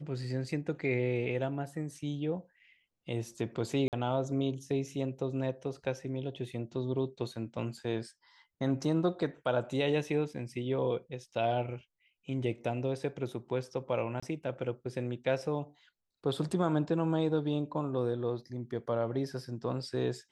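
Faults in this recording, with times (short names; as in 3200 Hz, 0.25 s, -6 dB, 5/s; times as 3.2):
3.88–3.93 gap 48 ms
14.2–14.22 gap 25 ms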